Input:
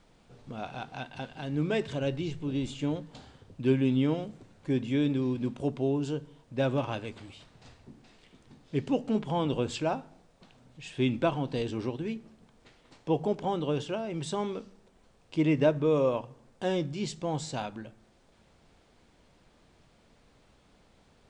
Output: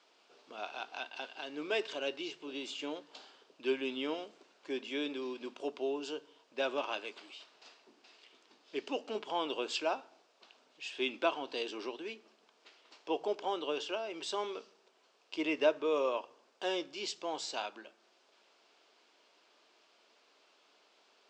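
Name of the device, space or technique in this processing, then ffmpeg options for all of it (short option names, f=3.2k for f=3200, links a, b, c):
phone speaker on a table: -af "highpass=f=400:w=0.5412,highpass=f=400:w=1.3066,equalizer=f=510:t=q:w=4:g=-7,equalizer=f=790:t=q:w=4:g=-4,equalizer=f=1.9k:t=q:w=4:g=-4,equalizer=f=2.8k:t=q:w=4:g=4,equalizer=f=4.9k:t=q:w=4:g=4,lowpass=f=7k:w=0.5412,lowpass=f=7k:w=1.3066"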